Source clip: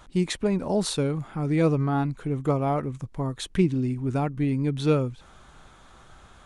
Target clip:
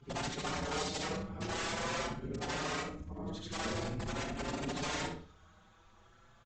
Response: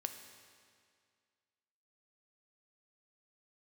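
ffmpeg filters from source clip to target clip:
-filter_complex "[0:a]afftfilt=real='re':imag='-im':win_size=8192:overlap=0.75,afreqshift=-13,aresample=16000,aeval=exprs='(mod(17.8*val(0)+1,2)-1)/17.8':channel_layout=same,aresample=44100,acontrast=39,afftfilt=real='hypot(re,im)*cos(2*PI*random(0))':imag='hypot(re,im)*sin(2*PI*random(1))':win_size=512:overlap=0.75,asplit=2[link_01][link_02];[link_02]adelay=36,volume=-11dB[link_03];[link_01][link_03]amix=inputs=2:normalize=0,asplit=2[link_04][link_05];[link_05]adelay=63,lowpass=frequency=4300:poles=1,volume=-6dB,asplit=2[link_06][link_07];[link_07]adelay=63,lowpass=frequency=4300:poles=1,volume=0.33,asplit=2[link_08][link_09];[link_09]adelay=63,lowpass=frequency=4300:poles=1,volume=0.33,asplit=2[link_10][link_11];[link_11]adelay=63,lowpass=frequency=4300:poles=1,volume=0.33[link_12];[link_04][link_06][link_08][link_10][link_12]amix=inputs=5:normalize=0,asplit=2[link_13][link_14];[link_14]adelay=5.4,afreqshift=0.46[link_15];[link_13][link_15]amix=inputs=2:normalize=1,volume=-4.5dB"

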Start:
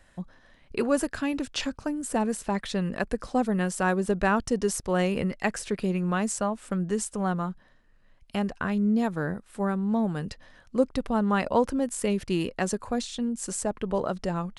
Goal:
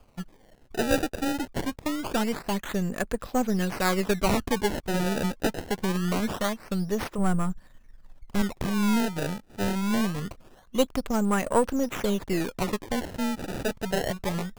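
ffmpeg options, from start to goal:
ffmpeg -i in.wav -filter_complex "[0:a]aeval=exprs='if(lt(val(0),0),0.447*val(0),val(0))':channel_layout=same,asettb=1/sr,asplit=3[link_01][link_02][link_03];[link_01]atrim=end=7.184[link_04];[link_02]atrim=start=7.18:end=8.42,asetpts=PTS-STARTPTS,afade=type=in:duration=0.004:curve=qsin,afade=type=out:start_time=1.236:duration=0.004:curve=qsin,lowshelf=frequency=120:gain=11.5[link_05];[link_03]atrim=start=8.416[link_06];[link_04][link_05]acrossfade=duration=0.004:curve1=hsin:curve2=qsin[link_07];[link_07][link_06]acrossfade=duration=0.004:curve1=qsin:curve2=hsin,acrusher=samples=23:mix=1:aa=0.000001:lfo=1:lforange=36.8:lforate=0.24,volume=3dB" out.wav

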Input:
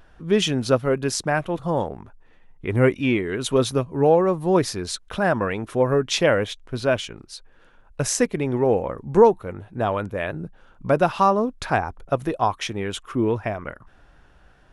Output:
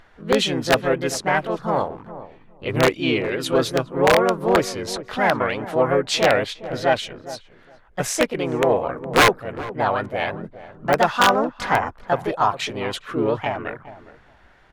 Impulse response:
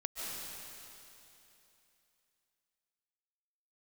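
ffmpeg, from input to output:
-filter_complex "[0:a]asplit=2[link_01][link_02];[link_02]asetrate=55563,aresample=44100,atempo=0.793701,volume=-2dB[link_03];[link_01][link_03]amix=inputs=2:normalize=0,aeval=exprs='(mod(1.88*val(0)+1,2)-1)/1.88':channel_layout=same,asplit=2[link_04][link_05];[link_05]highpass=frequency=720:poles=1,volume=6dB,asoftclip=type=tanh:threshold=-5dB[link_06];[link_04][link_06]amix=inputs=2:normalize=0,lowpass=frequency=3400:poles=1,volume=-6dB,asplit=2[link_07][link_08];[link_08]adelay=412,lowpass=frequency=820:poles=1,volume=-13dB,asplit=2[link_09][link_10];[link_10]adelay=412,lowpass=frequency=820:poles=1,volume=0.18[link_11];[link_07][link_09][link_11]amix=inputs=3:normalize=0"

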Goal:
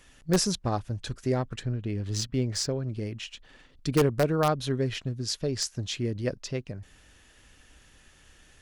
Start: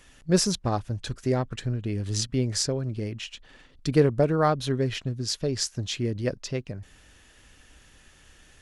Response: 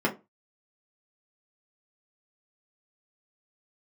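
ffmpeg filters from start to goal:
-filter_complex "[0:a]asplit=2[link_01][link_02];[link_02]aeval=exprs='(mod(3.55*val(0)+1,2)-1)/3.55':channel_layout=same,volume=-4.5dB[link_03];[link_01][link_03]amix=inputs=2:normalize=0,asettb=1/sr,asplit=3[link_04][link_05][link_06];[link_04]atrim=end=1.634[link_07];[link_05]atrim=start=1.63:end=2.88,asetpts=PTS-STARTPTS,afade=type=in:duration=0.004:curve=qsin,afade=type=out:start_time=1.246:duration=0.004:curve=qsin,adynamicsmooth=sensitivity=8:basefreq=5300[link_08];[link_06]atrim=start=2.876[link_09];[link_07][link_08]acrossfade=duration=0.004:curve1=hsin:curve2=qsin[link_10];[link_10][link_09]acrossfade=duration=0.004:curve1=qsin:curve2=hsin,volume=-6dB"

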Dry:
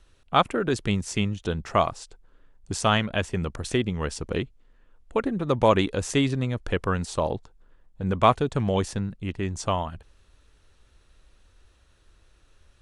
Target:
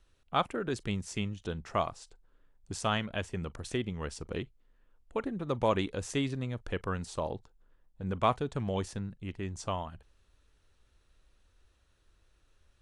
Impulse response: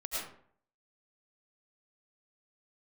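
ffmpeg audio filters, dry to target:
-filter_complex "[1:a]atrim=start_sample=2205,atrim=end_sample=3087,asetrate=70560,aresample=44100[link_01];[0:a][link_01]afir=irnorm=-1:irlink=0"

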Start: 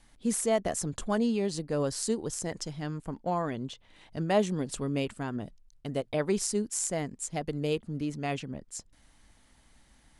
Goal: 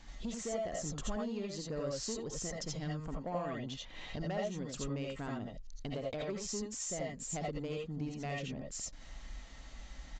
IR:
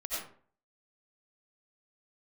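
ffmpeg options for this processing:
-filter_complex "[0:a]acompressor=threshold=-43dB:ratio=5,aresample=16000,asoftclip=type=tanh:threshold=-37.5dB,aresample=44100[link_01];[1:a]atrim=start_sample=2205,atrim=end_sample=3969[link_02];[link_01][link_02]afir=irnorm=-1:irlink=0,volume=10dB"

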